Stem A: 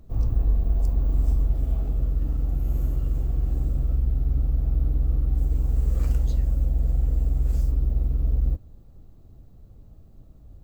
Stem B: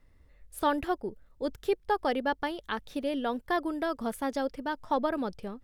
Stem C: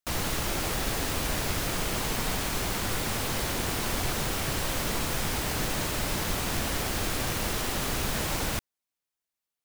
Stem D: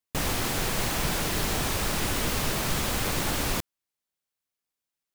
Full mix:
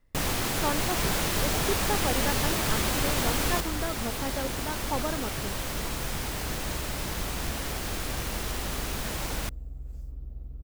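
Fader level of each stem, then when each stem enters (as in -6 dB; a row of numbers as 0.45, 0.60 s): -17.0, -3.5, -3.5, -0.5 dB; 2.40, 0.00, 0.90, 0.00 s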